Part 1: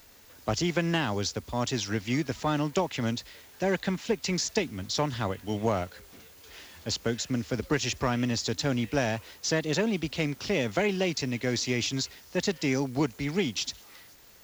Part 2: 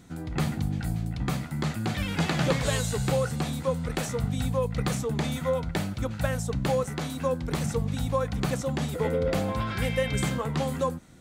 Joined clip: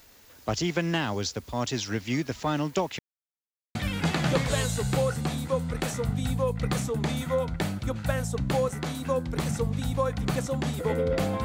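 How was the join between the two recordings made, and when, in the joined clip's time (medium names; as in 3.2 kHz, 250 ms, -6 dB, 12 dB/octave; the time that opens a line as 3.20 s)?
part 1
2.99–3.75 s: mute
3.75 s: go over to part 2 from 1.90 s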